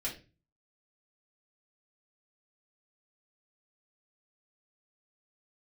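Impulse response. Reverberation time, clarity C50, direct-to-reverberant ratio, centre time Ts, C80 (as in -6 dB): 0.30 s, 10.0 dB, -5.5 dB, 20 ms, 15.5 dB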